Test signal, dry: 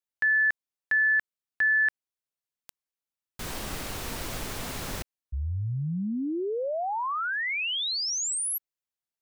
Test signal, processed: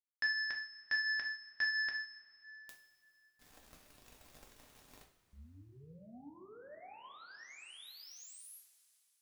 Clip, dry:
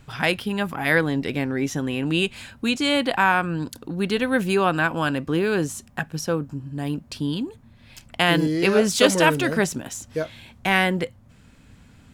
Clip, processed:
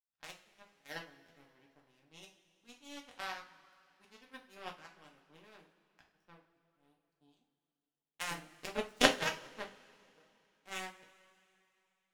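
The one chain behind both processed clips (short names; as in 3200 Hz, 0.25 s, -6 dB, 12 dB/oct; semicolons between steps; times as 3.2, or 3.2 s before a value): power-law curve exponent 3; two-slope reverb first 0.37 s, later 3.1 s, from -18 dB, DRR -0.5 dB; upward expander 1.5:1, over -43 dBFS; gain -1 dB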